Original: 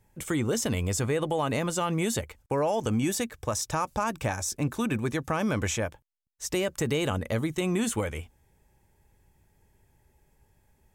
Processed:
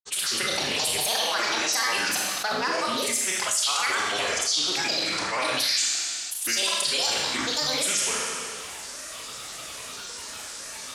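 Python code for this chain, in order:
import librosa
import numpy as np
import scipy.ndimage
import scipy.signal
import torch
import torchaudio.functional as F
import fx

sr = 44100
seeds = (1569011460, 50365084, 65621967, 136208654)

y = fx.rattle_buzz(x, sr, strikes_db=-41.0, level_db=-31.0)
y = fx.pitch_keep_formants(y, sr, semitones=-2.5)
y = fx.peak_eq(y, sr, hz=120.0, db=-5.5, octaves=0.77)
y = fx.granulator(y, sr, seeds[0], grain_ms=100.0, per_s=20.0, spray_ms=100.0, spread_st=12)
y = fx.weighting(y, sr, curve='ITU-R 468')
y = fx.rev_schroeder(y, sr, rt60_s=0.81, comb_ms=27, drr_db=0.5)
y = fx.env_flatten(y, sr, amount_pct=70)
y = F.gain(torch.from_numpy(y), -4.5).numpy()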